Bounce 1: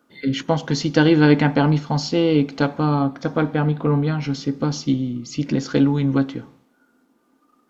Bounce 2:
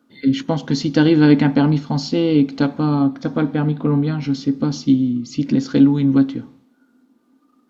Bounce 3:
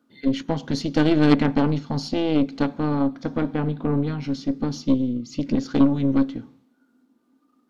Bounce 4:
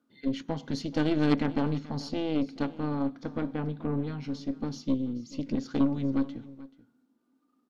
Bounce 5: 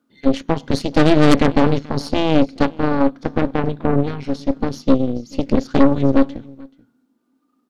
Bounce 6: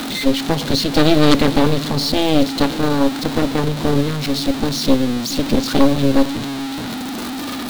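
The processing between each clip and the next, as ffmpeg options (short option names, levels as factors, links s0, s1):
-af "equalizer=f=100:t=o:w=0.67:g=6,equalizer=f=250:t=o:w=0.67:g=10,equalizer=f=4000:t=o:w=0.67:g=4,volume=0.708"
-af "aeval=exprs='0.891*(cos(1*acos(clip(val(0)/0.891,-1,1)))-cos(1*PI/2))+0.398*(cos(2*acos(clip(val(0)/0.891,-1,1)))-cos(2*PI/2))+0.282*(cos(4*acos(clip(val(0)/0.891,-1,1)))-cos(4*PI/2))':c=same,volume=0.531"
-af "aecho=1:1:433:0.119,volume=0.398"
-af "aeval=exprs='0.355*(cos(1*acos(clip(val(0)/0.355,-1,1)))-cos(1*PI/2))+0.126*(cos(8*acos(clip(val(0)/0.355,-1,1)))-cos(8*PI/2))':c=same,volume=2"
-af "aeval=exprs='val(0)+0.5*0.119*sgn(val(0))':c=same,equalizer=f=3900:t=o:w=0.6:g=9,volume=0.841"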